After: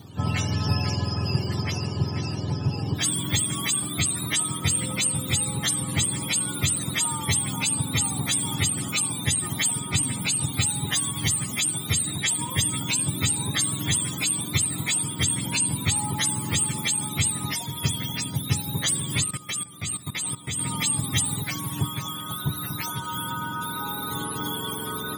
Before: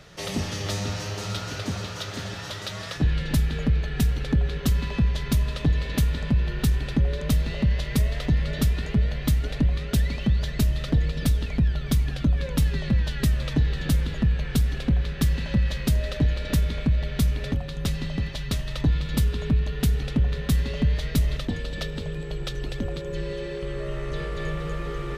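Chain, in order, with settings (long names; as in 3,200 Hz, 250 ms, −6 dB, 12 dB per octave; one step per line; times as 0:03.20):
frequency axis turned over on the octave scale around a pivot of 720 Hz
0:19.24–0:20.59: output level in coarse steps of 16 dB
level +3 dB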